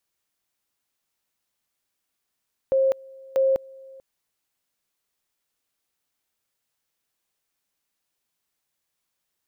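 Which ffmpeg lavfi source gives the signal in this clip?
ffmpeg -f lavfi -i "aevalsrc='pow(10,(-16.5-25*gte(mod(t,0.64),0.2))/20)*sin(2*PI*534*t)':duration=1.28:sample_rate=44100" out.wav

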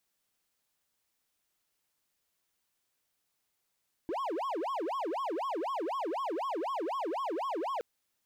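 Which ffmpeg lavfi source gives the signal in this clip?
ffmpeg -f lavfi -i "aevalsrc='0.0335*(1-4*abs(mod((711*t-399/(2*PI*4)*sin(2*PI*4*t))+0.25,1)-0.5))':duration=3.72:sample_rate=44100" out.wav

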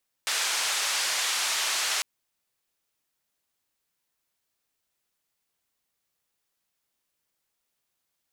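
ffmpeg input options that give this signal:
ffmpeg -f lavfi -i "anoisesrc=color=white:duration=1.75:sample_rate=44100:seed=1,highpass=frequency=860,lowpass=frequency=7000,volume=-17.3dB" out.wav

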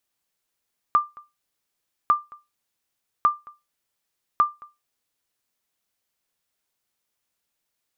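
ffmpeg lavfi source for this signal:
ffmpeg -f lavfi -i "aevalsrc='0.335*(sin(2*PI*1190*mod(t,1.15))*exp(-6.91*mod(t,1.15)/0.22)+0.0562*sin(2*PI*1190*max(mod(t,1.15)-0.22,0))*exp(-6.91*max(mod(t,1.15)-0.22,0)/0.22))':duration=4.6:sample_rate=44100" out.wav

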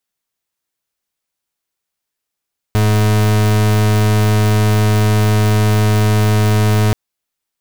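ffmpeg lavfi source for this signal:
ffmpeg -f lavfi -i "aevalsrc='0.251*(2*lt(mod(106*t,1),0.38)-1)':duration=4.18:sample_rate=44100" out.wav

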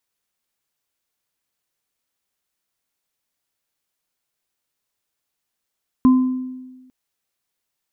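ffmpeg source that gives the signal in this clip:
ffmpeg -f lavfi -i "aevalsrc='0.422*pow(10,-3*t/1.28)*sin(2*PI*256*t)+0.0841*pow(10,-3*t/0.63)*sin(2*PI*1030*t)':duration=0.85:sample_rate=44100" out.wav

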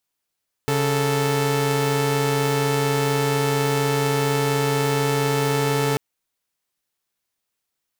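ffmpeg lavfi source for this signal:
ffmpeg -f lavfi -i "aevalsrc='0.112*((2*mod(138.59*t,1)-1)+(2*mod(440*t,1)-1))':duration=5.29:sample_rate=44100" out.wav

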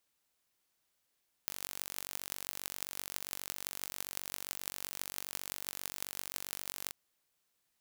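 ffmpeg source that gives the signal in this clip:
ffmpeg -f lavfi -i "aevalsrc='0.376*eq(mod(n,928),0)*(0.5+0.5*eq(mod(n,7424),0))':duration=5.45:sample_rate=44100" out.wav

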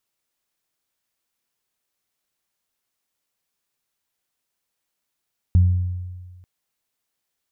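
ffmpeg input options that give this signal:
ffmpeg -f lavfi -i "aevalsrc='0.335*pow(10,-3*t/1.52)*sin(2*PI*90.3*t)+0.0596*pow(10,-3*t/0.94)*sin(2*PI*180.6*t)':duration=0.89:sample_rate=44100" out.wav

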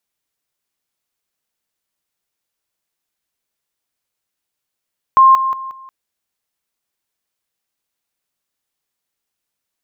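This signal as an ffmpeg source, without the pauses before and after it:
ffmpeg -f lavfi -i "aevalsrc='pow(10,(-4.5-10*floor(t/0.18))/20)*sin(2*PI*1060*t)':duration=0.72:sample_rate=44100" out.wav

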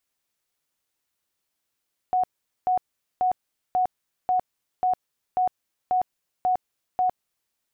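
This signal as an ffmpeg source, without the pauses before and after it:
ffmpeg -f lavfi -i "aevalsrc='0.119*sin(2*PI*736*mod(t,0.54))*lt(mod(t,0.54),78/736)':duration=5.4:sample_rate=44100" out.wav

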